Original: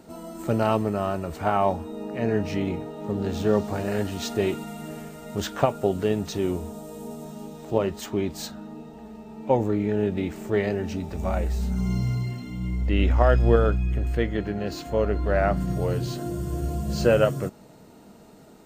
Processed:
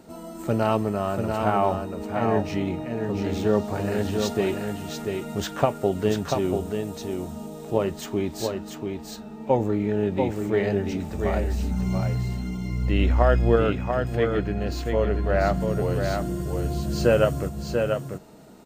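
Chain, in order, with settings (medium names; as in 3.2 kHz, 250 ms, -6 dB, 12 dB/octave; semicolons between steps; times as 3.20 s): delay 689 ms -5 dB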